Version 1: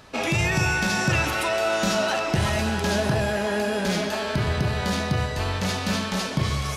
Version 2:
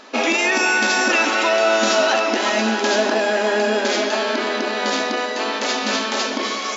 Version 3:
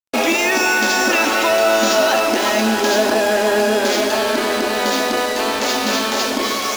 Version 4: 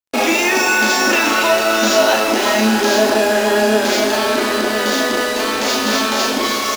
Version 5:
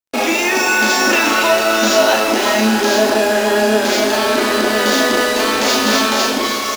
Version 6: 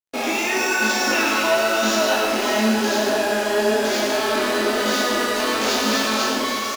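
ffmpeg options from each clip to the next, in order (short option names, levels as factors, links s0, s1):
-af "afftfilt=real='re*between(b*sr/4096,210,7500)':imag='im*between(b*sr/4096,210,7500)':win_size=4096:overlap=0.75,volume=2.24"
-filter_complex "[0:a]equalizer=f=2200:w=0.67:g=-3,asplit=2[s0][s1];[s1]alimiter=limit=0.141:level=0:latency=1,volume=0.891[s2];[s0][s2]amix=inputs=2:normalize=0,acrusher=bits=3:mix=0:aa=0.5"
-filter_complex "[0:a]asplit=2[s0][s1];[s1]adelay=37,volume=0.708[s2];[s0][s2]amix=inputs=2:normalize=0"
-af "dynaudnorm=f=130:g=11:m=3.76,volume=0.891"
-af "flanger=delay=17.5:depth=7:speed=1,aecho=1:1:114:0.562,volume=0.631"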